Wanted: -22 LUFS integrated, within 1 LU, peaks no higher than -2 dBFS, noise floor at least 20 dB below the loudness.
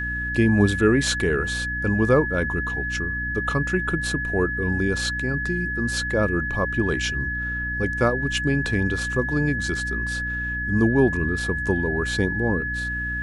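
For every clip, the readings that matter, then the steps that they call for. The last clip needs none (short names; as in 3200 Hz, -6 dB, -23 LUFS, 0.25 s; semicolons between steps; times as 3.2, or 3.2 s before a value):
hum 60 Hz; harmonics up to 300 Hz; hum level -29 dBFS; steady tone 1700 Hz; tone level -26 dBFS; loudness -23.0 LUFS; peak -6.0 dBFS; loudness target -22.0 LUFS
-> de-hum 60 Hz, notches 5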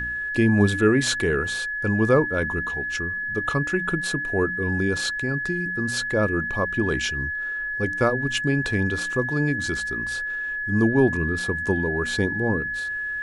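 hum none; steady tone 1700 Hz; tone level -26 dBFS
-> notch 1700 Hz, Q 30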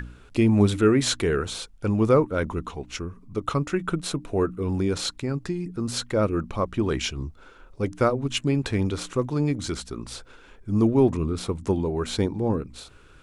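steady tone none; loudness -25.0 LUFS; peak -7.5 dBFS; loudness target -22.0 LUFS
-> gain +3 dB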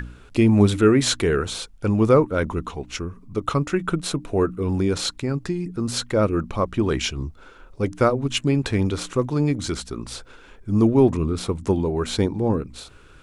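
loudness -22.0 LUFS; peak -4.5 dBFS; noise floor -48 dBFS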